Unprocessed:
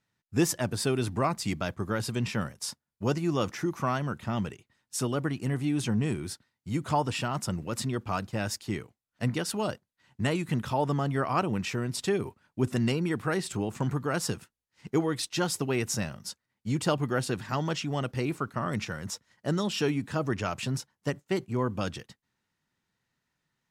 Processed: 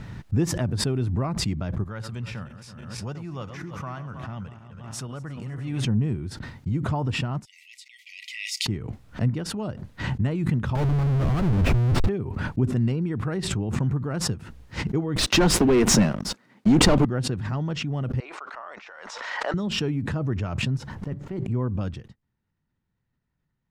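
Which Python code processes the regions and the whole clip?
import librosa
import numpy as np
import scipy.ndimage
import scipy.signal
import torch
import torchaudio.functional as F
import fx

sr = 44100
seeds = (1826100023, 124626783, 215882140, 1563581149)

y = fx.chain(x, sr, fx.reverse_delay_fb(ms=162, feedback_pct=60, wet_db=-11),
    fx.highpass(hz=200.0, slope=6),
    fx.peak_eq(hz=310.0, db=-11.0, octaves=1.7), at=(1.84, 5.85))
y = fx.chain(y, sr, fx.brickwall_highpass(low_hz=1900.0),
    fx.band_widen(depth_pct=100), at=(7.45, 8.66))
y = fx.chain(y, sr, fx.peak_eq(hz=100.0, db=8.5, octaves=1.4),
    fx.schmitt(flips_db=-34.0), at=(10.75, 12.09))
y = fx.chain(y, sr, fx.highpass(hz=200.0, slope=24),
    fx.leveller(passes=5), at=(15.16, 17.05))
y = fx.chain(y, sr, fx.highpass(hz=660.0, slope=24),
    fx.air_absorb(metres=100.0),
    fx.sustainer(db_per_s=36.0), at=(18.2, 19.54))
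y = fx.chain(y, sr, fx.block_float(bits=5),
    fx.high_shelf(hz=3400.0, db=-9.5),
    fx.over_compress(threshold_db=-33.0, ratio=-1.0), at=(20.95, 21.45))
y = fx.riaa(y, sr, side='playback')
y = fx.pre_swell(y, sr, db_per_s=35.0)
y = y * librosa.db_to_amplitude(-5.5)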